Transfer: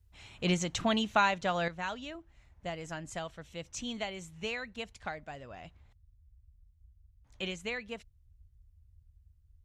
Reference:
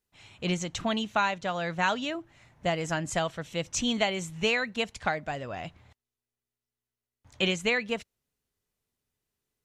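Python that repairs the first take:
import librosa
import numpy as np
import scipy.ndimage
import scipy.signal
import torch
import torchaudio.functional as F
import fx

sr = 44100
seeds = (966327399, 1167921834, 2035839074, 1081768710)

y = fx.noise_reduce(x, sr, print_start_s=9.0, print_end_s=9.5, reduce_db=27.0)
y = fx.gain(y, sr, db=fx.steps((0.0, 0.0), (1.68, 10.5)))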